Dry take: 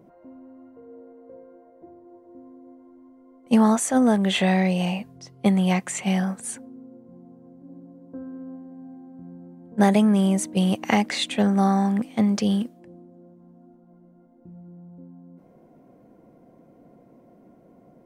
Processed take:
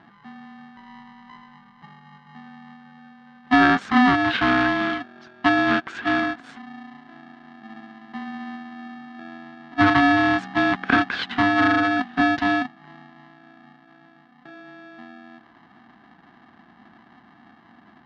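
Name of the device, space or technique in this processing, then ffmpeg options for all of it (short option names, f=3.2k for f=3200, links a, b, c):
ring modulator pedal into a guitar cabinet: -af "aeval=exprs='val(0)*sgn(sin(2*PI*500*n/s))':c=same,highpass=97,equalizer=f=230:t=q:w=4:g=7,equalizer=f=590:t=q:w=4:g=-5,equalizer=f=1.6k:t=q:w=4:g=10,equalizer=f=2.5k:t=q:w=4:g=-5,lowpass=f=3.7k:w=0.5412,lowpass=f=3.7k:w=1.3066"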